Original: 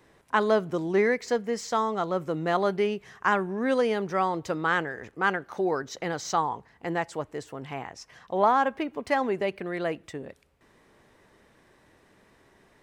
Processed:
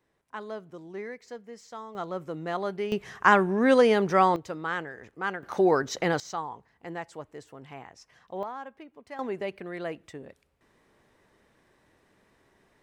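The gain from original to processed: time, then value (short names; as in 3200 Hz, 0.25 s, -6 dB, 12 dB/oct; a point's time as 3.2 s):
-15 dB
from 1.95 s -6 dB
from 2.92 s +5 dB
from 4.36 s -6 dB
from 5.43 s +5 dB
from 6.2 s -8 dB
from 8.43 s -16.5 dB
from 9.19 s -5 dB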